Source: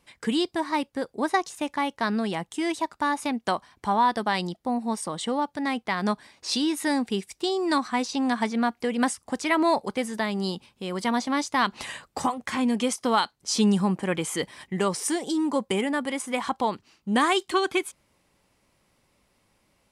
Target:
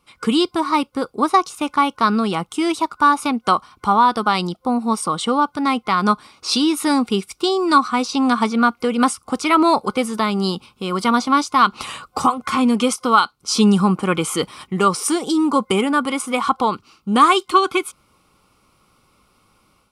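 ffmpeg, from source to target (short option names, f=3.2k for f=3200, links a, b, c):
-af "superequalizer=8b=0.631:10b=2.51:11b=0.355:15b=0.708,dynaudnorm=f=140:g=3:m=8dB"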